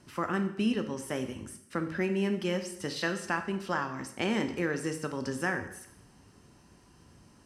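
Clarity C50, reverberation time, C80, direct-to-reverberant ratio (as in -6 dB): 10.0 dB, 0.75 s, 12.5 dB, 6.5 dB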